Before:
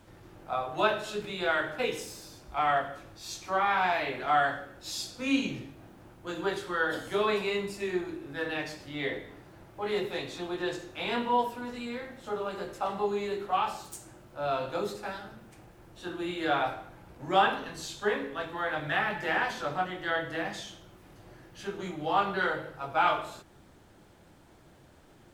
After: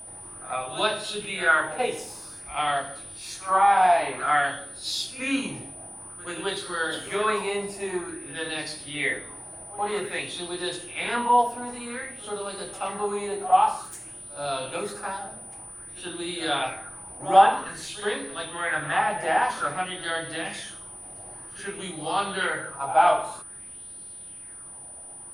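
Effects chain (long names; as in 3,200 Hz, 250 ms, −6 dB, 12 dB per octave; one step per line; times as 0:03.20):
echo ahead of the sound 82 ms −16.5 dB
steady tone 9,400 Hz −40 dBFS
auto-filter bell 0.52 Hz 700–4,300 Hz +12 dB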